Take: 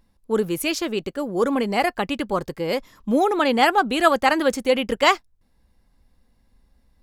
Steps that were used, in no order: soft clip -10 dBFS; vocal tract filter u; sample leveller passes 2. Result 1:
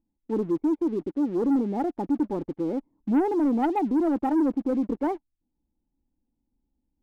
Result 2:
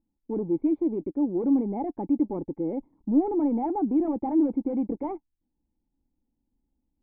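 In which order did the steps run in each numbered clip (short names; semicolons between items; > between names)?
vocal tract filter > soft clip > sample leveller; soft clip > sample leveller > vocal tract filter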